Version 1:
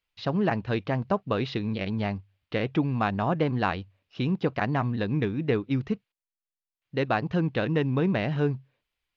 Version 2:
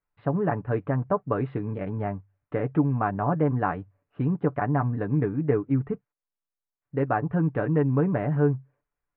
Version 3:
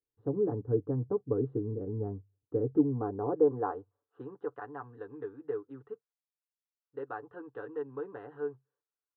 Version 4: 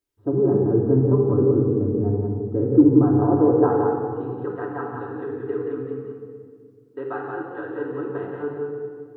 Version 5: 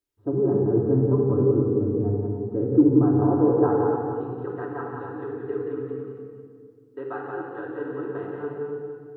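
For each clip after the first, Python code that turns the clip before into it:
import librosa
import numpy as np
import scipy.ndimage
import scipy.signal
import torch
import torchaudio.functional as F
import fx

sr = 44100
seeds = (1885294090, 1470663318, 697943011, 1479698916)

y1 = scipy.signal.sosfilt(scipy.signal.butter(4, 1600.0, 'lowpass', fs=sr, output='sos'), x)
y1 = y1 + 0.51 * np.pad(y1, (int(6.9 * sr / 1000.0), 0))[:len(y1)]
y2 = fx.graphic_eq(y1, sr, hz=(125, 250, 500, 1000, 2000), db=(8, -5, 10, -8, -5))
y2 = fx.filter_sweep_bandpass(y2, sr, from_hz=220.0, to_hz=2500.0, start_s=2.73, end_s=4.62, q=0.93)
y2 = fx.fixed_phaser(y2, sr, hz=610.0, stages=6)
y3 = y2 + 10.0 ** (-4.5 / 20.0) * np.pad(y2, (int(179 * sr / 1000.0), 0))[:len(y2)]
y3 = fx.room_shoebox(y3, sr, seeds[0], volume_m3=3300.0, walls='mixed', distance_m=2.8)
y3 = y3 * librosa.db_to_amplitude(7.0)
y4 = y3 + 10.0 ** (-9.0 / 20.0) * np.pad(y3, (int(281 * sr / 1000.0), 0))[:len(y3)]
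y4 = y4 * librosa.db_to_amplitude(-3.0)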